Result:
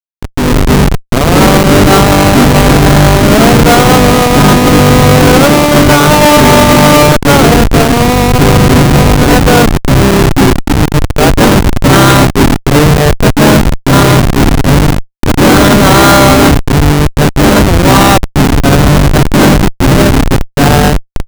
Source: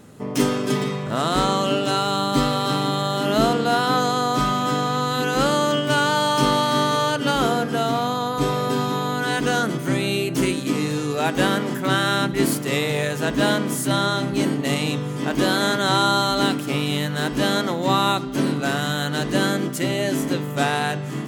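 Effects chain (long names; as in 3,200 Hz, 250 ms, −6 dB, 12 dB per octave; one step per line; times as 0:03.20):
gate on every frequency bin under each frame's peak −15 dB strong
Butterworth low-pass 5,500 Hz 96 dB per octave
comparator with hysteresis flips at −20.5 dBFS
automatic gain control gain up to 15 dB
boost into a limiter +7 dB
level −1 dB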